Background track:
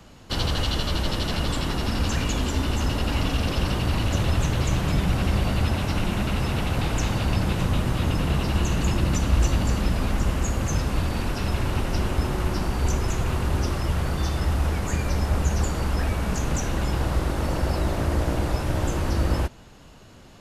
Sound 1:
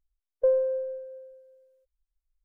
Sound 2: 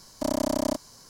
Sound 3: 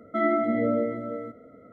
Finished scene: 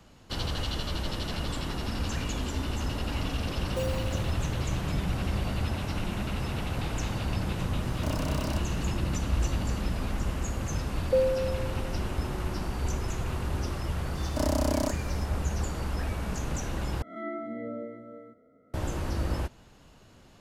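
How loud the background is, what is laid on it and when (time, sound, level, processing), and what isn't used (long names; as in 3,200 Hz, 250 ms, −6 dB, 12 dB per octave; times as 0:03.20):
background track −7 dB
0:03.33: mix in 1 −11.5 dB + one scale factor per block 3 bits
0:07.82: mix in 2 −5 dB + hard clipping −26.5 dBFS
0:10.69: mix in 1 −12 dB + parametric band 510 Hz +10.5 dB
0:14.15: mix in 2 −2 dB
0:17.02: overwrite with 3 −13 dB + peak hold with a rise ahead of every peak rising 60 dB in 0.60 s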